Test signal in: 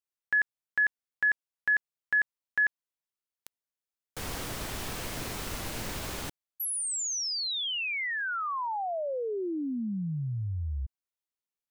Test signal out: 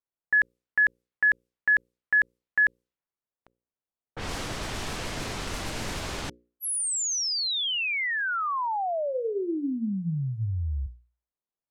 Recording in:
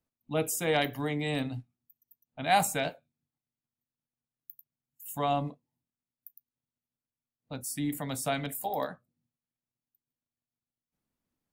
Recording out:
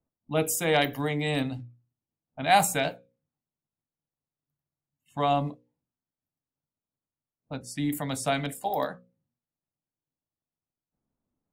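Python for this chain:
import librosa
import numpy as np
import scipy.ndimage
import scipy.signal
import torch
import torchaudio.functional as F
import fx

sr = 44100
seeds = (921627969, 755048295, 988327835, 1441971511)

y = fx.env_lowpass(x, sr, base_hz=970.0, full_db=-29.5)
y = fx.hum_notches(y, sr, base_hz=60, count=9)
y = y * librosa.db_to_amplitude(4.0)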